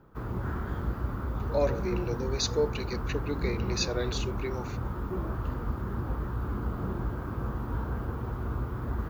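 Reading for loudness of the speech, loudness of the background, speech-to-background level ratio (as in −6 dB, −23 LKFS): −32.5 LKFS, −34.0 LKFS, 1.5 dB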